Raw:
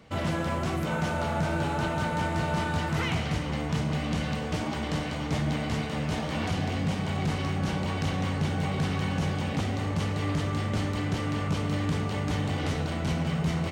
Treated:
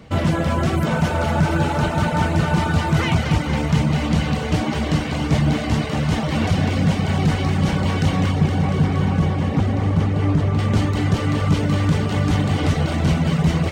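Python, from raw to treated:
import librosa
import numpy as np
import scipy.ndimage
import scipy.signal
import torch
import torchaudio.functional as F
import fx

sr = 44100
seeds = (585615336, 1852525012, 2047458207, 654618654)

y = fx.high_shelf(x, sr, hz=2300.0, db=-12.0, at=(8.31, 10.59))
y = fx.echo_thinned(y, sr, ms=234, feedback_pct=79, hz=420.0, wet_db=-7.0)
y = fx.dereverb_blind(y, sr, rt60_s=0.54)
y = fx.low_shelf(y, sr, hz=340.0, db=6.0)
y = y * librosa.db_to_amplitude(7.0)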